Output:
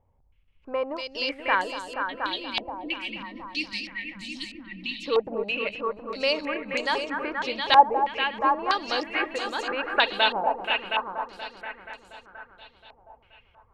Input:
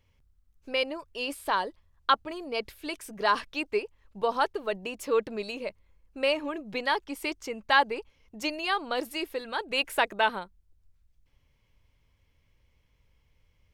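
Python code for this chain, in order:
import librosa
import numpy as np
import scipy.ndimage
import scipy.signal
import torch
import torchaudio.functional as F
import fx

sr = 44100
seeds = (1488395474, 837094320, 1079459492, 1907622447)

y = fx.spec_erase(x, sr, start_s=2.07, length_s=2.99, low_hz=350.0, high_hz=1800.0)
y = fx.echo_heads(y, sr, ms=239, heads='all three', feedback_pct=52, wet_db=-10.5)
y = fx.filter_held_lowpass(y, sr, hz=3.1, low_hz=800.0, high_hz=7000.0)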